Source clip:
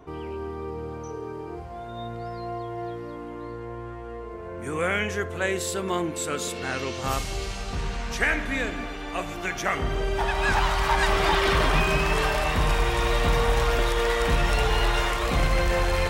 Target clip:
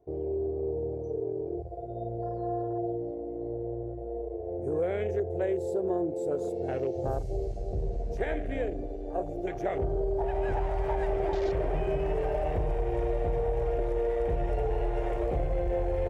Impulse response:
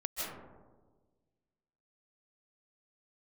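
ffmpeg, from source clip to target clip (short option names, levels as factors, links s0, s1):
-af "afwtdn=0.0355,firequalizer=gain_entry='entry(130,0);entry(220,-11);entry(360,5);entry(720,2);entry(1100,-18);entry(1800,-13);entry(3000,-16);entry(4400,-9);entry(6500,-7)':delay=0.05:min_phase=1,acompressor=threshold=0.0562:ratio=6"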